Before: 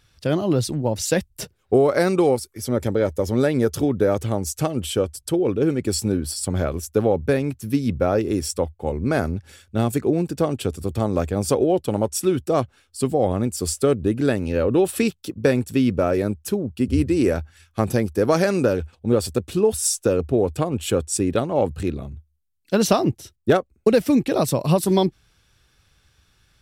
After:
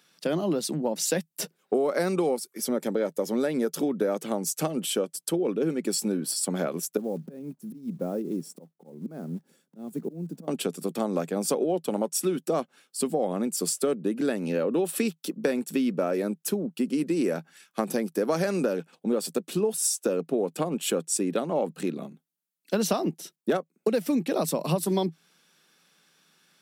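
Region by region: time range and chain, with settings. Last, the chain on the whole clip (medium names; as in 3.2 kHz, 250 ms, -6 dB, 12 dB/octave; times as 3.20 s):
6.97–10.48 s: block-companded coder 5-bit + FFT filter 140 Hz 0 dB, 2.2 kHz -22 dB, 11 kHz -17 dB + slow attack 289 ms
whole clip: Chebyshev high-pass 160 Hz, order 6; treble shelf 9.2 kHz +5.5 dB; compression 2.5:1, threshold -25 dBFS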